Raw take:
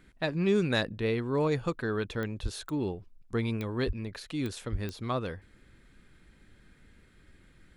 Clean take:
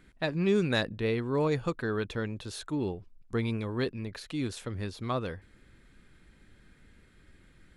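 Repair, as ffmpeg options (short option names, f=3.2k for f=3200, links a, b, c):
-filter_complex "[0:a]adeclick=t=4,asplit=3[a][b][c];[a]afade=t=out:st=2.42:d=0.02[d];[b]highpass=f=140:w=0.5412,highpass=f=140:w=1.3066,afade=t=in:st=2.42:d=0.02,afade=t=out:st=2.54:d=0.02[e];[c]afade=t=in:st=2.54:d=0.02[f];[d][e][f]amix=inputs=3:normalize=0,asplit=3[g][h][i];[g]afade=t=out:st=3.86:d=0.02[j];[h]highpass=f=140:w=0.5412,highpass=f=140:w=1.3066,afade=t=in:st=3.86:d=0.02,afade=t=out:st=3.98:d=0.02[k];[i]afade=t=in:st=3.98:d=0.02[l];[j][k][l]amix=inputs=3:normalize=0,asplit=3[m][n][o];[m]afade=t=out:st=4.71:d=0.02[p];[n]highpass=f=140:w=0.5412,highpass=f=140:w=1.3066,afade=t=in:st=4.71:d=0.02,afade=t=out:st=4.83:d=0.02[q];[o]afade=t=in:st=4.83:d=0.02[r];[p][q][r]amix=inputs=3:normalize=0"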